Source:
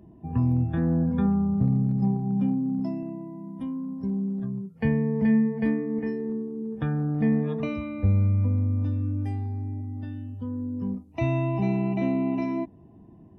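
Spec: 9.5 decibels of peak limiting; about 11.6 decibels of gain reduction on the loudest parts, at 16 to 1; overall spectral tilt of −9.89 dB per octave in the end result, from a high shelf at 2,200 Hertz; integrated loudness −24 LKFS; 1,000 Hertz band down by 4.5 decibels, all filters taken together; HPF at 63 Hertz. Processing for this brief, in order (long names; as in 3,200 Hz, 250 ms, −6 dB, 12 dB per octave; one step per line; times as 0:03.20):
high-pass filter 63 Hz
parametric band 1,000 Hz −5 dB
high-shelf EQ 2,200 Hz −7.5 dB
downward compressor 16 to 1, threshold −29 dBFS
level +12 dB
brickwall limiter −16.5 dBFS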